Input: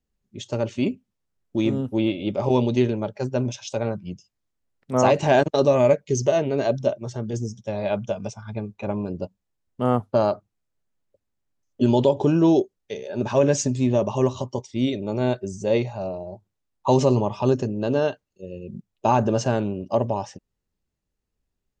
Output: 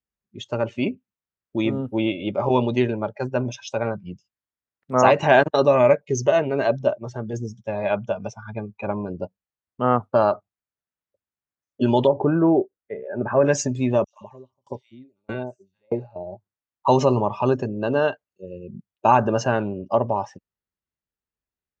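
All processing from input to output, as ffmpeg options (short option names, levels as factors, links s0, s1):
-filter_complex "[0:a]asettb=1/sr,asplit=3[s0][s1][s2];[s0]atrim=end=12.074[s3];[s1]atrim=start=12.07:end=13.45,asetpts=PTS-STARTPTS,afade=t=in:d=0.004:c=qsin,afade=t=out:st=1.376:d=0.004:c=qsin,lowpass=f=1900:w=0.5412,lowpass=f=1900:w=1.3066,equalizer=f=950:w=5.8:g=-5.5[s4];[s2]atrim=start=13.446[s5];[s3][s4]acrossfade=d=0.004:c1=hsin:c2=qsin[s6];[s6][s5]acrossfade=d=0.004:c1=qsin:c2=hsin,asettb=1/sr,asplit=3[s7][s8][s9];[s7]atrim=end=14.044[s10];[s8]atrim=start=14.04:end=16.16,asetpts=PTS-STARTPTS,afade=t=in:d=0.004:c=qsin,afade=t=out:st=2.116:d=0.004:c=qsin,acrossover=split=1100|4800[s11][s12][s13];[s12]adelay=90[s14];[s11]adelay=170[s15];[s15][s14][s13]amix=inputs=3:normalize=0,atrim=end_sample=93492,aeval=exprs='val(0)*pow(10,-39*if(lt(mod(1.6*n/s,1),2*abs(1.6)/1000),1-mod(1.6*n/s,1)/(2*abs(1.6)/1000),(mod(1.6*n/s,1)-2*abs(1.6)/1000)/(1-2*abs(1.6)/1000))/20)':c=same[s16];[s9]atrim=start=16.156[s17];[s10][s16]acrossfade=d=0.004:c1=hsin:c2=qsin[s18];[s18][s17]acrossfade=d=0.004:c1=qsin:c2=hsin,highpass=45,equalizer=f=1500:t=o:w=2.2:g=9.5,afftdn=nr=12:nf=-35,volume=0.794"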